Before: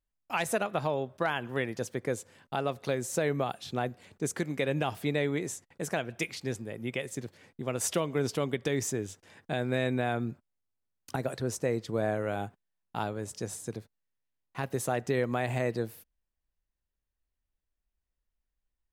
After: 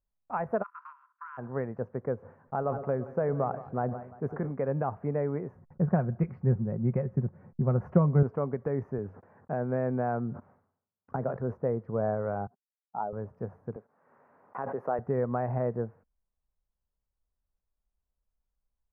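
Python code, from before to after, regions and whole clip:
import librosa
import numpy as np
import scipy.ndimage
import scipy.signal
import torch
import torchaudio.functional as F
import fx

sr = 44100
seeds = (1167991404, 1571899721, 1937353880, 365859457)

y = fx.spec_flatten(x, sr, power=0.48, at=(0.62, 1.37), fade=0.02)
y = fx.cheby_ripple_highpass(y, sr, hz=970.0, ripple_db=9, at=(0.62, 1.37), fade=0.02)
y = fx.level_steps(y, sr, step_db=13, at=(0.62, 1.37), fade=0.02)
y = fx.chain(y, sr, fx.echo_split(split_hz=570.0, low_ms=105, high_ms=172, feedback_pct=52, wet_db=-15.0),
    fx.sustainer(db_per_s=80.0), at=(2.19, 4.51))
y = fx.chain(y, sr, fx.bass_treble(bass_db=14, treble_db=-3),
    fx.comb(ms=5.5, depth=0.36), at=(5.55, 8.23))
y = fx.chain(y, sr, fx.highpass(hz=100.0, slope=12),
    fx.sustainer(db_per_s=96.0), at=(8.98, 11.54))
y = fx.chain(y, sr, fx.spec_expand(power=1.9),
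    fx.highpass(hz=300.0, slope=12), at=(12.47, 13.13))
y = fx.chain(y, sr, fx.highpass(hz=310.0, slope=12),
    fx.pre_swell(db_per_s=45.0), at=(13.76, 14.99))
y = scipy.signal.sosfilt(scipy.signal.cheby2(4, 50, 3300.0, 'lowpass', fs=sr, output='sos'), y)
y = fx.peak_eq(y, sr, hz=320.0, db=-10.0, octaves=0.31)
y = y * 10.0 ** (1.5 / 20.0)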